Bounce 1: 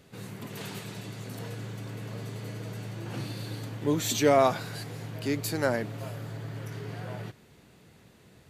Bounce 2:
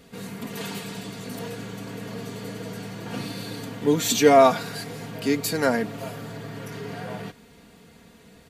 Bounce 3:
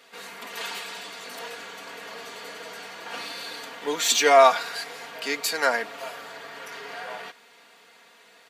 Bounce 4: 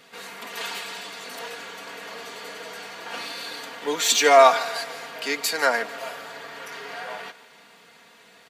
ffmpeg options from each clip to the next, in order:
-af "aecho=1:1:4.3:0.64,volume=4.5dB"
-filter_complex "[0:a]asplit=2[a][b];[b]adynamicsmooth=sensitivity=3:basefreq=7.2k,volume=1.5dB[c];[a][c]amix=inputs=2:normalize=0,highpass=820,volume=-2dB"
-filter_complex "[0:a]acrossover=split=190[a][b];[a]acompressor=mode=upward:threshold=-59dB:ratio=2.5[c];[c][b]amix=inputs=2:normalize=0,aecho=1:1:148|296|444|592|740:0.126|0.0692|0.0381|0.0209|0.0115,volume=1.5dB"

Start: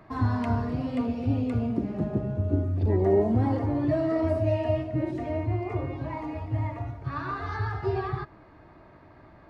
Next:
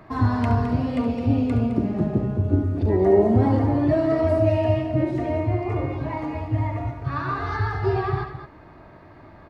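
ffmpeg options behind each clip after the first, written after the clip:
-af "aecho=1:1:69.97|212.8:0.282|0.316,volume=5dB"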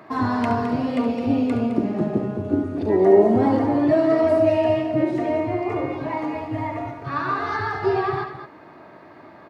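-af "highpass=220,volume=3.5dB"

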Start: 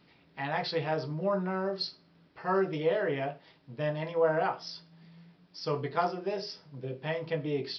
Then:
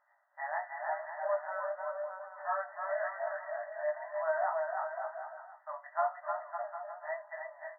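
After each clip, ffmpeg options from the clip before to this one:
-af "aecho=1:1:310|558|756.4|915.1|1042:0.631|0.398|0.251|0.158|0.1,flanger=delay=16:depth=4.7:speed=0.93,afftfilt=real='re*between(b*sr/4096,570,2000)':imag='im*between(b*sr/4096,570,2000)':win_size=4096:overlap=0.75"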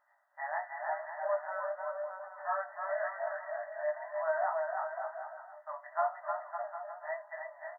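-filter_complex "[0:a]asplit=2[a][b];[b]adelay=1691,volume=-20dB,highshelf=f=4k:g=-38[c];[a][c]amix=inputs=2:normalize=0"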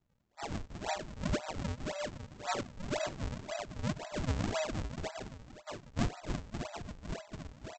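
-af "lowpass=f=1k:p=1,aresample=16000,acrusher=samples=26:mix=1:aa=0.000001:lfo=1:lforange=41.6:lforate=1.9,aresample=44100,volume=1dB"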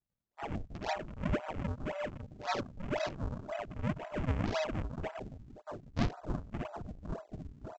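-af "afwtdn=0.00447,volume=1dB"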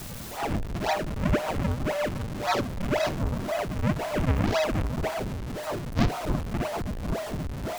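-af "aeval=exprs='val(0)+0.5*0.0158*sgn(val(0))':c=same,volume=6.5dB"

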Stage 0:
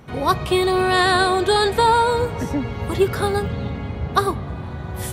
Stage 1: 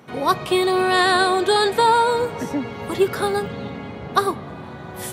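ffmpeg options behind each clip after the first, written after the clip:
-af "highpass=190"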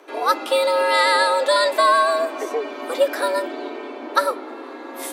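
-af "afreqshift=170"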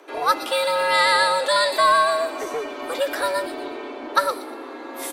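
-filter_complex "[0:a]acrossover=split=710|2300[a][b][c];[a]asoftclip=type=tanh:threshold=-26dB[d];[c]aecho=1:1:119|238|357|476:0.422|0.131|0.0405|0.0126[e];[d][b][e]amix=inputs=3:normalize=0"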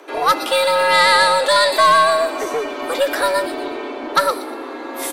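-af "aeval=exprs='0.668*(cos(1*acos(clip(val(0)/0.668,-1,1)))-cos(1*PI/2))+0.188*(cos(5*acos(clip(val(0)/0.668,-1,1)))-cos(5*PI/2))+0.0422*(cos(7*acos(clip(val(0)/0.668,-1,1)))-cos(7*PI/2))+0.0119*(cos(8*acos(clip(val(0)/0.668,-1,1)))-cos(8*PI/2))':c=same"

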